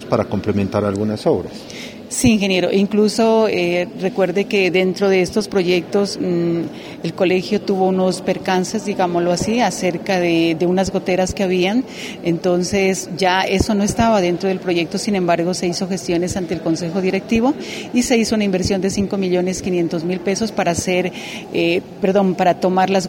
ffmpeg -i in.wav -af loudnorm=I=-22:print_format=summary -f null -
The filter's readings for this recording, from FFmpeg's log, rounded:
Input Integrated:    -17.8 LUFS
Input True Peak:      -1.3 dBTP
Input LRA:             2.5 LU
Input Threshold:     -27.9 LUFS